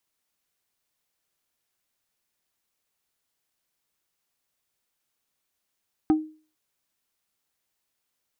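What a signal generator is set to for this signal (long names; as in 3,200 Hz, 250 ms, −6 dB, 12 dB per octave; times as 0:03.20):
struck wood plate, lowest mode 311 Hz, decay 0.38 s, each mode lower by 10 dB, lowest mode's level −13.5 dB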